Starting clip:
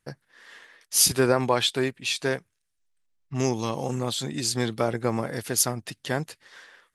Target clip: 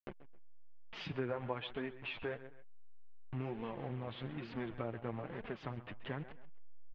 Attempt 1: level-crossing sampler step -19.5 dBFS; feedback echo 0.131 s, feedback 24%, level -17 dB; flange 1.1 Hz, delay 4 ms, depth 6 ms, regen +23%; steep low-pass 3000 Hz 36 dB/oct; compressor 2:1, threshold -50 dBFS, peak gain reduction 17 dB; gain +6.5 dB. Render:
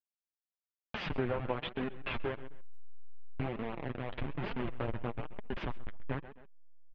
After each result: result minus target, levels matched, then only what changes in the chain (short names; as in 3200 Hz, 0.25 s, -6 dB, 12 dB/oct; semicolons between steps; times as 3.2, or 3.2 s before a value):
level-crossing sampler: distortion +12 dB; compressor: peak gain reduction -5 dB
change: level-crossing sampler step -31 dBFS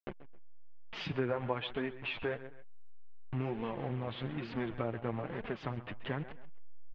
compressor: peak gain reduction -4.5 dB
change: compressor 2:1, threshold -59.5 dBFS, peak gain reduction 21.5 dB